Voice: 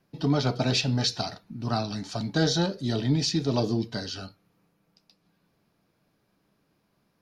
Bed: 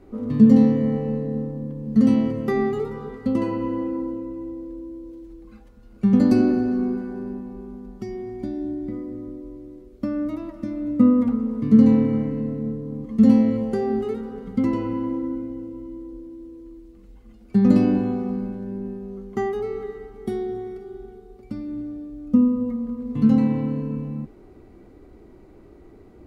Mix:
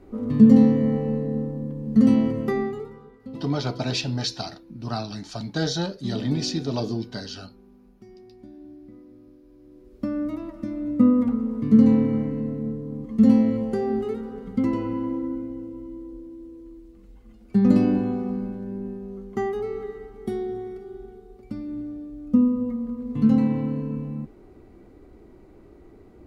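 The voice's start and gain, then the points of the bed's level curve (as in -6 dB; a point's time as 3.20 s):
3.20 s, -1.5 dB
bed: 2.43 s 0 dB
3.15 s -15.5 dB
9.47 s -15.5 dB
9.96 s -1.5 dB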